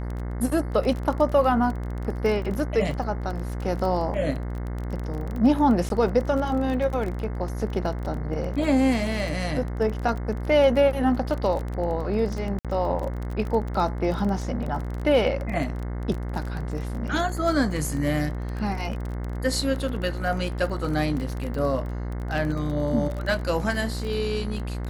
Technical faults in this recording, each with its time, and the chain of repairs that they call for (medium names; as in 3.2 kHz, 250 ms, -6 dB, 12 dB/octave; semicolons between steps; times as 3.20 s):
buzz 60 Hz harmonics 36 -30 dBFS
crackle 23 per s -29 dBFS
5.89–5.90 s: dropout 12 ms
12.59–12.65 s: dropout 57 ms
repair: de-click; de-hum 60 Hz, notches 36; interpolate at 5.89 s, 12 ms; interpolate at 12.59 s, 57 ms